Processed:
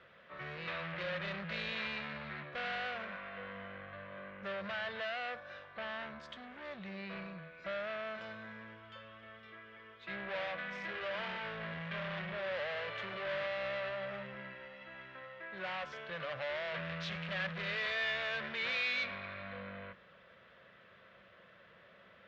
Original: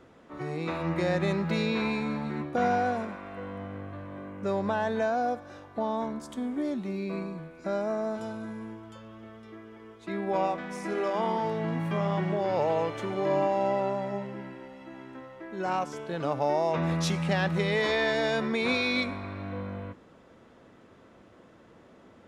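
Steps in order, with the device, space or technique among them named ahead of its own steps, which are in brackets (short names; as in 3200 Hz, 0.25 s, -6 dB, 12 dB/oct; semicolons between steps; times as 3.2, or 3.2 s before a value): scooped metal amplifier (tube stage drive 34 dB, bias 0.35; speaker cabinet 92–3500 Hz, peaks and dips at 96 Hz -7 dB, 190 Hz +6 dB, 360 Hz +4 dB, 560 Hz +8 dB, 850 Hz -8 dB, 1700 Hz +4 dB; passive tone stack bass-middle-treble 10-0-10); gain +7.5 dB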